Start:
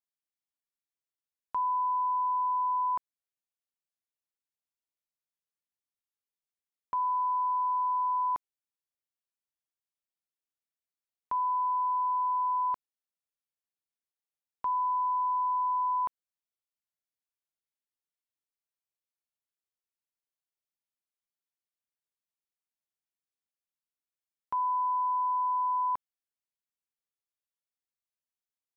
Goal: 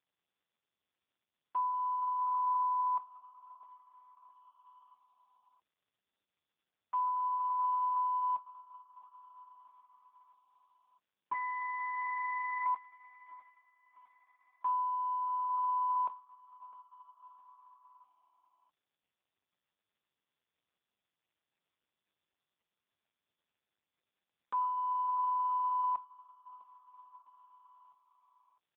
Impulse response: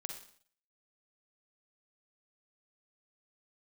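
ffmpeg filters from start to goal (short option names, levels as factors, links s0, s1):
-filter_complex "[0:a]asplit=3[s0][s1][s2];[s0]afade=t=out:st=2.35:d=0.02[s3];[s1]bandreject=f=324.4:t=h:w=4,bandreject=f=648.8:t=h:w=4,bandreject=f=973.2:t=h:w=4,bandreject=f=1297.6:t=h:w=4,bandreject=f=1622:t=h:w=4,bandreject=f=1946.4:t=h:w=4,bandreject=f=2270.8:t=h:w=4,bandreject=f=2595.2:t=h:w=4,afade=t=in:st=2.35:d=0.02,afade=t=out:st=2.96:d=0.02[s4];[s2]afade=t=in:st=2.96:d=0.02[s5];[s3][s4][s5]amix=inputs=3:normalize=0,acrossover=split=460|590[s6][s7][s8];[s7]alimiter=level_in=22.4:limit=0.0631:level=0:latency=1:release=42,volume=0.0447[s9];[s6][s9][s8]amix=inputs=3:normalize=0,asettb=1/sr,asplit=3[s10][s11][s12];[s10]atrim=end=11.334[s13];[s11]atrim=start=11.33:end=12.66,asetpts=PTS-STARTPTS,afade=t=in:d=0.004:c=qsin,afade=t=out:st=1.326:d=0.004:c=qsin,aeval=exprs='max(val(0),0)':c=same[s14];[s12]atrim=start=12.656[s15];[s13][s14]acrossfade=d=0.004:c1=hsin:c2=qsin[s16];[s16][s15]acrossfade=d=0.004:c1=qsin:c2=hsin,aecho=1:1:655|1310|1965|2620:0.119|0.063|0.0334|0.0177" -ar 8000 -c:a libopencore_amrnb -b:a 5150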